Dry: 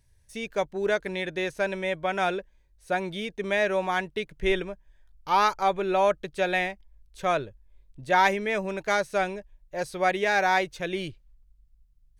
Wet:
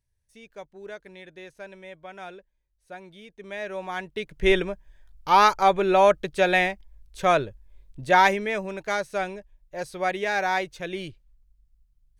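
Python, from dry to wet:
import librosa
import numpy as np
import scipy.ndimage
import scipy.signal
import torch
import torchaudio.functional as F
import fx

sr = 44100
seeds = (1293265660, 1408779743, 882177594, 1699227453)

y = fx.gain(x, sr, db=fx.line((3.2, -14.0), (4.04, -4.0), (4.48, 5.0), (8.04, 5.0), (8.69, -2.0)))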